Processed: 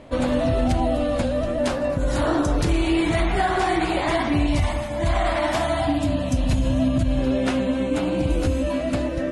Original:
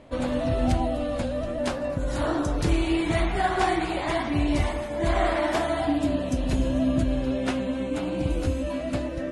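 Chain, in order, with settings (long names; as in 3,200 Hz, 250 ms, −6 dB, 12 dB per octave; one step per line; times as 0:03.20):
0:04.46–0:07.19: graphic EQ with 15 bands 100 Hz +6 dB, 400 Hz −11 dB, 1,600 Hz −3 dB
brickwall limiter −17.5 dBFS, peak gain reduction 7 dB
level +5.5 dB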